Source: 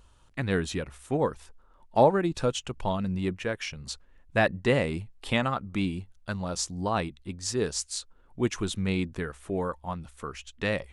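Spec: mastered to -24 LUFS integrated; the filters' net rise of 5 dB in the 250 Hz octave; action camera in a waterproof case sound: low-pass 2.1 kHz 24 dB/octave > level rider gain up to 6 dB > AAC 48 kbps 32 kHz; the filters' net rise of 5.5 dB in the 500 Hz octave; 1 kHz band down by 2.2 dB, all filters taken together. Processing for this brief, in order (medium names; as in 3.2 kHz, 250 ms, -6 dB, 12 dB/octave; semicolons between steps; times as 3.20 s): low-pass 2.1 kHz 24 dB/octave; peaking EQ 250 Hz +5 dB; peaking EQ 500 Hz +7 dB; peaking EQ 1 kHz -6.5 dB; level rider gain up to 6 dB; trim +2 dB; AAC 48 kbps 32 kHz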